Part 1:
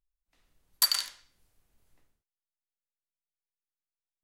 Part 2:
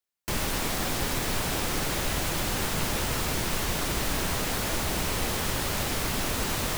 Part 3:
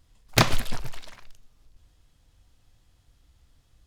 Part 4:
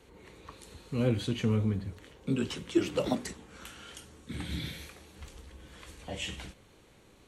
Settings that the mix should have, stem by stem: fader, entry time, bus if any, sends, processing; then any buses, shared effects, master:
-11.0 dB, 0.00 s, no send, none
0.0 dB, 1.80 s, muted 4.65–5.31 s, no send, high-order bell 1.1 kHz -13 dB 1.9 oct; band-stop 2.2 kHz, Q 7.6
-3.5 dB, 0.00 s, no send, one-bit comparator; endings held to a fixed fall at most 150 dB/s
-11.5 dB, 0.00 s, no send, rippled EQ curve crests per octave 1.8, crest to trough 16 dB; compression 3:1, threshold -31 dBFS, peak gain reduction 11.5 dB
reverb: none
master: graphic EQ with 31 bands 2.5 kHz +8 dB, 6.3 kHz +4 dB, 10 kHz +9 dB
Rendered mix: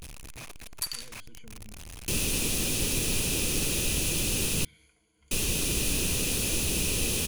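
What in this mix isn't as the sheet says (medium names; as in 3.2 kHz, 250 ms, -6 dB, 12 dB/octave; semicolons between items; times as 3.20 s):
stem 3 -3.5 dB -> -15.0 dB; stem 4 -11.5 dB -> -21.5 dB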